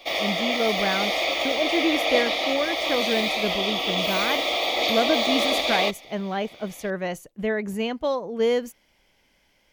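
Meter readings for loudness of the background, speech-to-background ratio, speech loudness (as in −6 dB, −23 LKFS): −23.0 LKFS, −4.5 dB, −27.5 LKFS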